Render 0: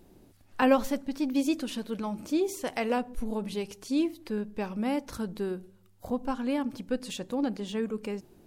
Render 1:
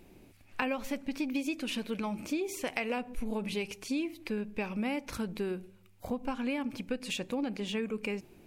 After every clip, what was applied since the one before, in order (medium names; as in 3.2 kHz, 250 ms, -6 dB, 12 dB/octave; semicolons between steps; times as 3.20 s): peaking EQ 2.4 kHz +12 dB 0.51 oct; compression 12:1, threshold -29 dBFS, peak gain reduction 13.5 dB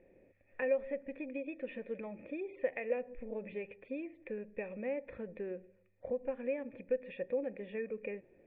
cascade formant filter e; peaking EQ 2.6 kHz -2.5 dB; trim +7 dB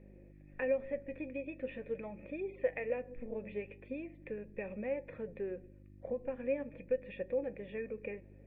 mains buzz 50 Hz, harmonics 7, -56 dBFS -4 dB/octave; flange 0.42 Hz, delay 4.8 ms, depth 4.8 ms, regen +67%; trim +4 dB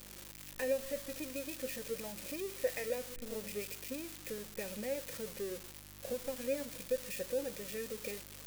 zero-crossing glitches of -30 dBFS; trim -1.5 dB